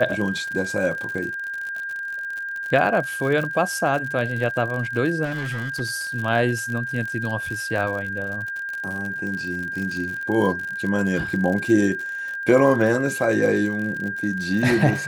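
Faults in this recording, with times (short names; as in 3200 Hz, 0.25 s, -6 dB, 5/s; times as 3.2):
crackle 62/s -28 dBFS
tone 1600 Hz -27 dBFS
5.24–5.81 clipped -24 dBFS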